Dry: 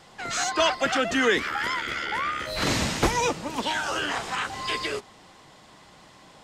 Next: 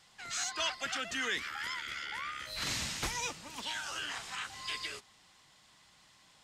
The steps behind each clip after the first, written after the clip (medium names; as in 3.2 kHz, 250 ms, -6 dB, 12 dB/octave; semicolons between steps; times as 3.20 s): amplifier tone stack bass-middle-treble 5-5-5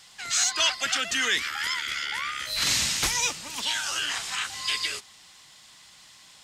treble shelf 2 kHz +9.5 dB; trim +4.5 dB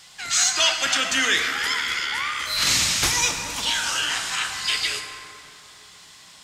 plate-style reverb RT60 2.9 s, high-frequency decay 0.45×, DRR 3.5 dB; trim +3.5 dB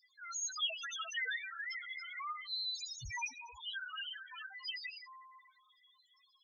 loudest bins only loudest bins 2; trim -7.5 dB